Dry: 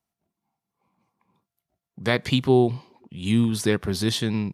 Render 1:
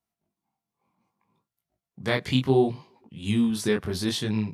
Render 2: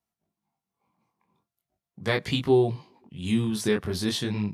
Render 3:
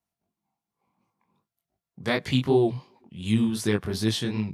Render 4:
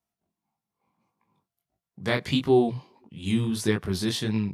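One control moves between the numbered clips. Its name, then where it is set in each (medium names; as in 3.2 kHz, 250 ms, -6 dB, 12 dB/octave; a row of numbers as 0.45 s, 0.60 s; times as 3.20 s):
chorus, rate: 0.66 Hz, 0.41 Hz, 2.7 Hz, 1.6 Hz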